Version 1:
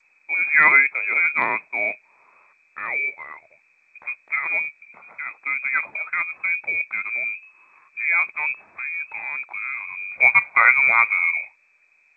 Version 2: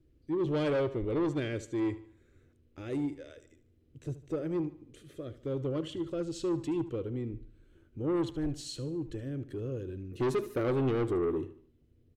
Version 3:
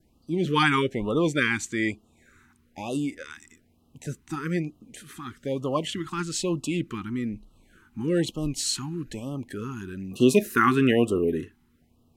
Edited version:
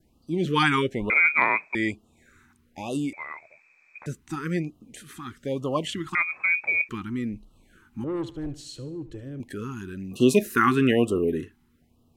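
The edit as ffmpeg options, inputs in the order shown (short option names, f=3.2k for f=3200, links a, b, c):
-filter_complex "[0:a]asplit=3[a][b][c];[2:a]asplit=5[d][e][f][g][h];[d]atrim=end=1.102[i];[a]atrim=start=1.098:end=1.752[j];[e]atrim=start=1.748:end=3.132[k];[b]atrim=start=3.128:end=4.062[l];[f]atrim=start=4.058:end=6.152[m];[c]atrim=start=6.148:end=6.892[n];[g]atrim=start=6.888:end=8.042[o];[1:a]atrim=start=8.038:end=9.402[p];[h]atrim=start=9.398[q];[i][j]acrossfade=d=0.004:c1=hsin:c2=hsin[r];[r][k]acrossfade=d=0.004:c1=hsin:c2=hsin[s];[s][l]acrossfade=d=0.004:c1=hsin:c2=hsin[t];[t][m]acrossfade=d=0.004:c1=hsin:c2=hsin[u];[u][n]acrossfade=d=0.004:c1=hsin:c2=hsin[v];[v][o]acrossfade=d=0.004:c1=hsin:c2=hsin[w];[w][p]acrossfade=d=0.004:c1=hsin:c2=hsin[x];[x][q]acrossfade=d=0.004:c1=hsin:c2=hsin"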